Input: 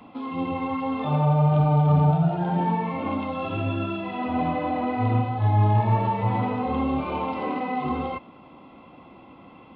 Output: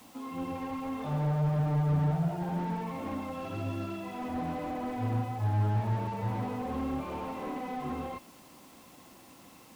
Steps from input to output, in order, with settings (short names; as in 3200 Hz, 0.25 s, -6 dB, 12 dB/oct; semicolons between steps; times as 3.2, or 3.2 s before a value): added noise white -49 dBFS; slew limiter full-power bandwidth 35 Hz; gain -8 dB